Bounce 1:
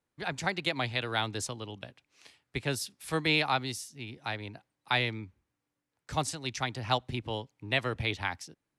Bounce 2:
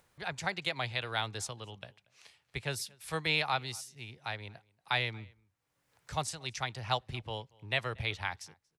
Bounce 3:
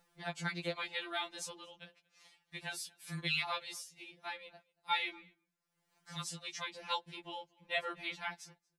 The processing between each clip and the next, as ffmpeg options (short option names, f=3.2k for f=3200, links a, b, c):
-filter_complex "[0:a]asplit=2[a][b];[b]adelay=233.2,volume=-26dB,highshelf=f=4k:g=-5.25[c];[a][c]amix=inputs=2:normalize=0,acompressor=mode=upward:threshold=-51dB:ratio=2.5,equalizer=f=280:t=o:w=0.76:g=-11,volume=-2.5dB"
-af "afftfilt=real='re*2.83*eq(mod(b,8),0)':imag='im*2.83*eq(mod(b,8),0)':win_size=2048:overlap=0.75,volume=-1.5dB"